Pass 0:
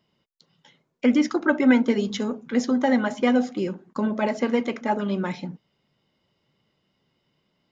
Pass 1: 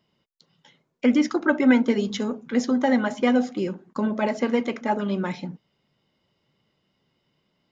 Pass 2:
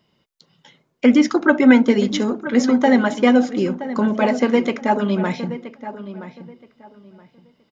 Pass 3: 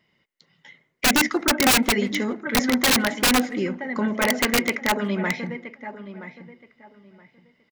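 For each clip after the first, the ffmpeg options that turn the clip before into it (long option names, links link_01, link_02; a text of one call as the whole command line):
ffmpeg -i in.wav -af anull out.wav
ffmpeg -i in.wav -filter_complex "[0:a]asplit=2[link_01][link_02];[link_02]adelay=973,lowpass=frequency=2600:poles=1,volume=-13dB,asplit=2[link_03][link_04];[link_04]adelay=973,lowpass=frequency=2600:poles=1,volume=0.23,asplit=2[link_05][link_06];[link_06]adelay=973,lowpass=frequency=2600:poles=1,volume=0.23[link_07];[link_01][link_03][link_05][link_07]amix=inputs=4:normalize=0,volume=6dB" out.wav
ffmpeg -i in.wav -filter_complex "[0:a]equalizer=frequency=2000:width=3.2:gain=14.5,aeval=exprs='(mod(2.11*val(0)+1,2)-1)/2.11':channel_layout=same,asplit=2[link_01][link_02];[link_02]adelay=160,highpass=300,lowpass=3400,asoftclip=type=hard:threshold=-15dB,volume=-24dB[link_03];[link_01][link_03]amix=inputs=2:normalize=0,volume=-5.5dB" out.wav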